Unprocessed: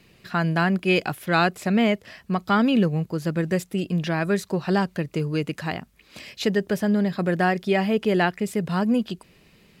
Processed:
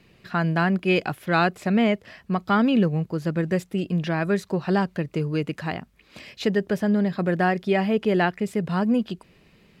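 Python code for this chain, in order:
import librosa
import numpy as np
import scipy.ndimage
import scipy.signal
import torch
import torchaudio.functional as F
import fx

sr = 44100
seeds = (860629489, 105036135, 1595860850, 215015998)

y = fx.high_shelf(x, sr, hz=4800.0, db=-8.5)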